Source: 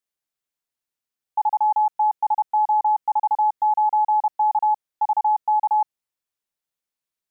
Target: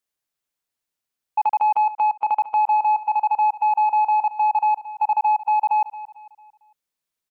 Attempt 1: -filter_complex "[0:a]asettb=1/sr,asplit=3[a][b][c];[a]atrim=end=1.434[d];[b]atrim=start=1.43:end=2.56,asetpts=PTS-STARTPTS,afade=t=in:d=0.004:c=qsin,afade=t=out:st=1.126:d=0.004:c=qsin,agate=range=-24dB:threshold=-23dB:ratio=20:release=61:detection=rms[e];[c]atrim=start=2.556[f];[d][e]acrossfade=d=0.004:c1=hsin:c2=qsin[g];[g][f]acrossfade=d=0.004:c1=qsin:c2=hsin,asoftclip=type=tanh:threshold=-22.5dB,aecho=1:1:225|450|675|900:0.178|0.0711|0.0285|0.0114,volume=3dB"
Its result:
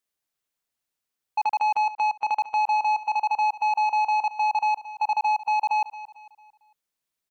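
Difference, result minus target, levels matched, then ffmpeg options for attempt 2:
soft clip: distortion +10 dB
-filter_complex "[0:a]asettb=1/sr,asplit=3[a][b][c];[a]atrim=end=1.434[d];[b]atrim=start=1.43:end=2.56,asetpts=PTS-STARTPTS,afade=t=in:d=0.004:c=qsin,afade=t=out:st=1.126:d=0.004:c=qsin,agate=range=-24dB:threshold=-23dB:ratio=20:release=61:detection=rms[e];[c]atrim=start=2.556[f];[d][e]acrossfade=d=0.004:c1=hsin:c2=qsin[g];[g][f]acrossfade=d=0.004:c1=qsin:c2=hsin,asoftclip=type=tanh:threshold=-15dB,aecho=1:1:225|450|675|900:0.178|0.0711|0.0285|0.0114,volume=3dB"

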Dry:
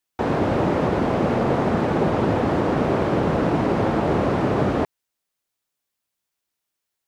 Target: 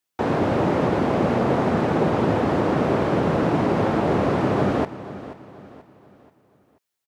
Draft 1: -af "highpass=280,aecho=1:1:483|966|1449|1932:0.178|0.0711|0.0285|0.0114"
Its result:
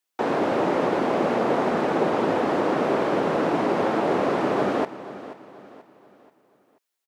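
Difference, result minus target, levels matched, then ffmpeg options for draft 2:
125 Hz band -9.5 dB
-af "highpass=75,aecho=1:1:483|966|1449|1932:0.178|0.0711|0.0285|0.0114"

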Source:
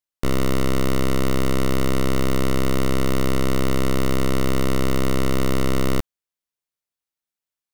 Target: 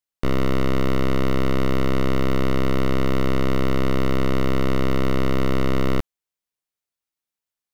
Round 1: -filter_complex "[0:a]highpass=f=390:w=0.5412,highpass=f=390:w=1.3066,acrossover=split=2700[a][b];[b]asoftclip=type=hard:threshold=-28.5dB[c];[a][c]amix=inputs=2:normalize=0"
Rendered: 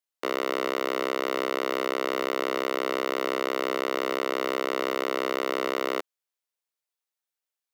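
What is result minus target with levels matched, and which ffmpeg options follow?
500 Hz band +3.0 dB
-filter_complex "[0:a]acrossover=split=2700[a][b];[b]asoftclip=type=hard:threshold=-28.5dB[c];[a][c]amix=inputs=2:normalize=0"

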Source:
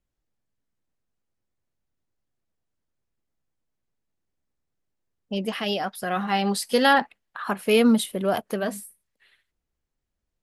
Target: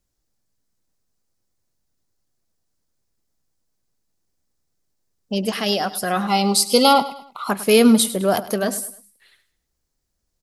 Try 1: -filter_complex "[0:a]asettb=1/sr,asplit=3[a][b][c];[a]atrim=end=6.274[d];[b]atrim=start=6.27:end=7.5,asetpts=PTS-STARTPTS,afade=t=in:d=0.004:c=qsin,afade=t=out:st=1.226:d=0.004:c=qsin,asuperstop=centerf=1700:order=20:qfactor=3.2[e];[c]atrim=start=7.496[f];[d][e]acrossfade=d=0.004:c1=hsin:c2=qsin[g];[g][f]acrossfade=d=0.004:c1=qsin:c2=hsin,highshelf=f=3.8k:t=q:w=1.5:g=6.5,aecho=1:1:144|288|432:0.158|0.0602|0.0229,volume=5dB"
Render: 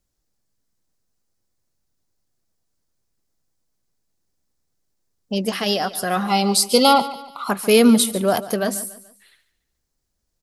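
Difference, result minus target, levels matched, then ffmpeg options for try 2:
echo 41 ms late
-filter_complex "[0:a]asettb=1/sr,asplit=3[a][b][c];[a]atrim=end=6.274[d];[b]atrim=start=6.27:end=7.5,asetpts=PTS-STARTPTS,afade=t=in:d=0.004:c=qsin,afade=t=out:st=1.226:d=0.004:c=qsin,asuperstop=centerf=1700:order=20:qfactor=3.2[e];[c]atrim=start=7.496[f];[d][e]acrossfade=d=0.004:c1=hsin:c2=qsin[g];[g][f]acrossfade=d=0.004:c1=qsin:c2=hsin,highshelf=f=3.8k:t=q:w=1.5:g=6.5,aecho=1:1:103|206|309:0.158|0.0602|0.0229,volume=5dB"

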